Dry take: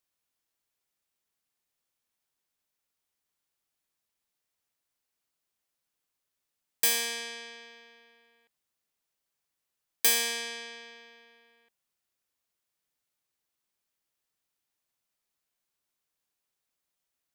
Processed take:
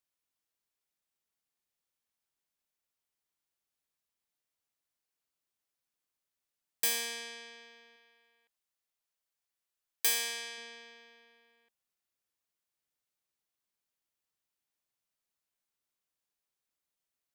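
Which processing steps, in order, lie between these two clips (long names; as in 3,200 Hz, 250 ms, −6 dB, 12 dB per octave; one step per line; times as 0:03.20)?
0:07.96–0:10.58: parametric band 180 Hz −7.5 dB 2.4 octaves
level −5 dB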